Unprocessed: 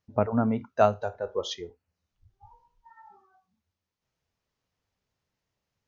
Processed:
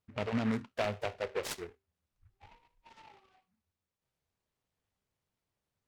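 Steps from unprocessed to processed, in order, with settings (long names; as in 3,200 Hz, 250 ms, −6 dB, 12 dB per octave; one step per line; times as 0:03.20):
brickwall limiter −18 dBFS, peak gain reduction 11 dB
tuned comb filter 390 Hz, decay 0.35 s, harmonics all, mix 40%
short delay modulated by noise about 1,400 Hz, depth 0.11 ms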